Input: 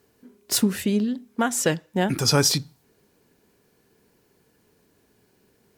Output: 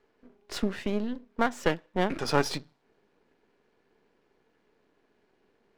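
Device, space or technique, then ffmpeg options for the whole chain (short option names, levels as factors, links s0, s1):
crystal radio: -af "highpass=260,lowpass=2900,aeval=exprs='if(lt(val(0),0),0.251*val(0),val(0))':c=same"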